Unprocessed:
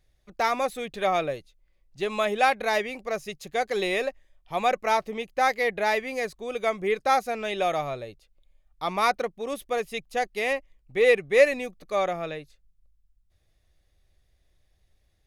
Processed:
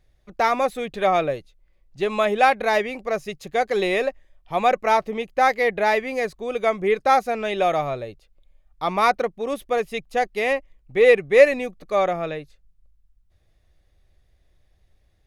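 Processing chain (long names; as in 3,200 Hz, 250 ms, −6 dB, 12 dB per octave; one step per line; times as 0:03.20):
high-shelf EQ 3,000 Hz −7 dB
level +5.5 dB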